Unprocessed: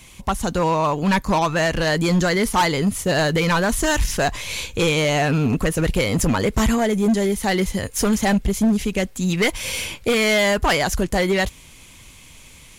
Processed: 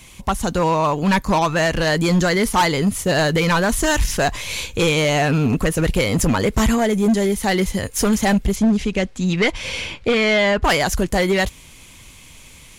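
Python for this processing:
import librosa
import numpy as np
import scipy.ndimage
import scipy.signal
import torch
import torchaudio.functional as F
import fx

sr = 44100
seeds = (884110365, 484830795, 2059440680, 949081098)

y = fx.lowpass(x, sr, hz=fx.line((8.55, 6600.0), (10.63, 3700.0)), slope=12, at=(8.55, 10.63), fade=0.02)
y = F.gain(torch.from_numpy(y), 1.5).numpy()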